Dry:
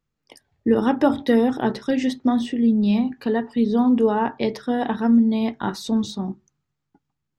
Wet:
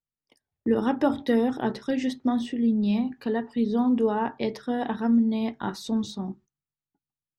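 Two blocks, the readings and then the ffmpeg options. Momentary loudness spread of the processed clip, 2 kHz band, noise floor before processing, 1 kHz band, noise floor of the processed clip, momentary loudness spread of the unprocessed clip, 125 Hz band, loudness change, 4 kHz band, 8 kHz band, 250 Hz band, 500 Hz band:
8 LU, -5.0 dB, -79 dBFS, -5.0 dB, under -85 dBFS, 8 LU, -5.0 dB, -5.0 dB, -5.0 dB, no reading, -5.0 dB, -5.0 dB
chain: -af "agate=range=0.2:threshold=0.00631:ratio=16:detection=peak,volume=0.562"

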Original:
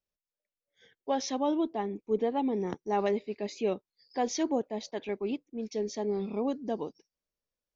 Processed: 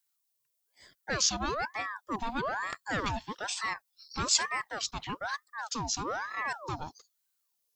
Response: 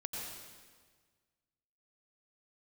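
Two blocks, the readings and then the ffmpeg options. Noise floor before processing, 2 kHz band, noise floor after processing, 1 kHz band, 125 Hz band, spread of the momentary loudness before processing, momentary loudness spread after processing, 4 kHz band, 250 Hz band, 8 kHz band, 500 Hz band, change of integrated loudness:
under -85 dBFS, +13.0 dB, -79 dBFS, +1.0 dB, +2.5 dB, 8 LU, 11 LU, +10.5 dB, -9.5 dB, no reading, -10.5 dB, -0.5 dB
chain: -filter_complex "[0:a]acrossover=split=200|670|1700[s0][s1][s2][s3];[s1]asoftclip=type=hard:threshold=0.0316[s4];[s3]crystalizer=i=6.5:c=0[s5];[s0][s4][s2][s5]amix=inputs=4:normalize=0,aeval=exprs='val(0)*sin(2*PI*1000*n/s+1000*0.55/1.1*sin(2*PI*1.1*n/s))':c=same"

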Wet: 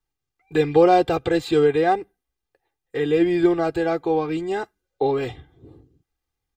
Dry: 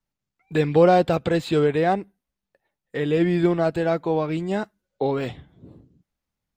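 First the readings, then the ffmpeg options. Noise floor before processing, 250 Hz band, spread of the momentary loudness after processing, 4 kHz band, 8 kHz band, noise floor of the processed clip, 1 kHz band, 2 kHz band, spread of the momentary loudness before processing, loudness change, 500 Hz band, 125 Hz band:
-85 dBFS, +1.0 dB, 11 LU, +1.0 dB, no reading, -83 dBFS, +2.5 dB, +0.5 dB, 12 LU, +1.0 dB, +1.5 dB, -5.5 dB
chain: -af "aecho=1:1:2.5:0.76,volume=0.891"

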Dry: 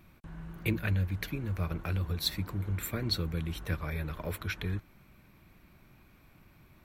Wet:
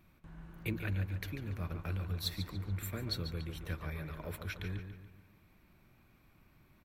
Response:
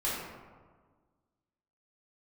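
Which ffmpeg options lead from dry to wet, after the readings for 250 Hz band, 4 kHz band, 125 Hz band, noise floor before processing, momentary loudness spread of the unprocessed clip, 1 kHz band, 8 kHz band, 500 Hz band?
-6.0 dB, -6.0 dB, -5.0 dB, -61 dBFS, 6 LU, -5.5 dB, -6.5 dB, -5.5 dB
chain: -filter_complex "[0:a]asplit=2[s0][s1];[s1]adelay=143,lowpass=f=4800:p=1,volume=0.422,asplit=2[s2][s3];[s3]adelay=143,lowpass=f=4800:p=1,volume=0.46,asplit=2[s4][s5];[s5]adelay=143,lowpass=f=4800:p=1,volume=0.46,asplit=2[s6][s7];[s7]adelay=143,lowpass=f=4800:p=1,volume=0.46,asplit=2[s8][s9];[s9]adelay=143,lowpass=f=4800:p=1,volume=0.46[s10];[s0][s2][s4][s6][s8][s10]amix=inputs=6:normalize=0,volume=0.473"

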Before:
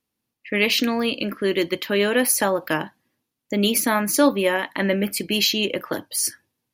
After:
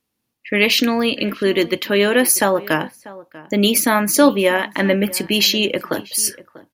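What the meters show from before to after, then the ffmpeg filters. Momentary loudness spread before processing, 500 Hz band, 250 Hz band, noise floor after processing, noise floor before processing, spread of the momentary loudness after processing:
8 LU, +4.5 dB, +4.5 dB, -75 dBFS, -81 dBFS, 8 LU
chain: -filter_complex "[0:a]asplit=2[s0][s1];[s1]adelay=641.4,volume=0.112,highshelf=f=4000:g=-14.4[s2];[s0][s2]amix=inputs=2:normalize=0,volume=1.68"

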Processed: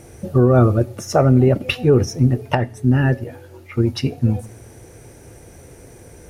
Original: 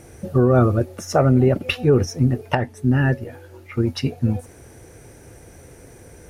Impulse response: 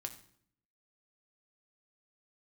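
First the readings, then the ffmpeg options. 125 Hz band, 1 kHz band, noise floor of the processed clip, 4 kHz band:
+3.0 dB, +1.5 dB, -44 dBFS, +1.5 dB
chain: -filter_complex "[0:a]equalizer=f=1600:t=o:w=0.77:g=-2.5,asplit=2[s0][s1];[1:a]atrim=start_sample=2205[s2];[s1][s2]afir=irnorm=-1:irlink=0,volume=0.376[s3];[s0][s3]amix=inputs=2:normalize=0"

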